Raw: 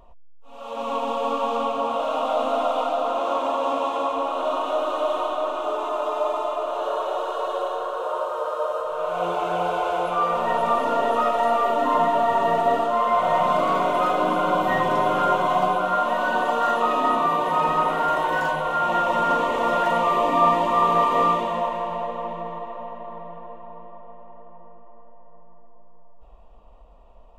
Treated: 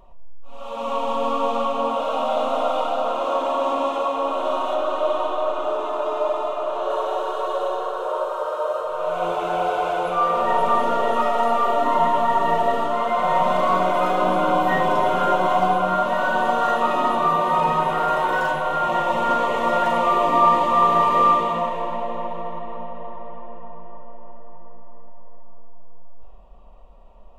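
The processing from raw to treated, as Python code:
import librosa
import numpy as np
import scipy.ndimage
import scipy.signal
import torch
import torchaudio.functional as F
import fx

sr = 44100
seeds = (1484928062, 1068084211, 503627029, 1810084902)

y = fx.high_shelf(x, sr, hz=6400.0, db=-7.0, at=(4.74, 6.9))
y = fx.room_shoebox(y, sr, seeds[0], volume_m3=1800.0, walls='mixed', distance_m=1.1)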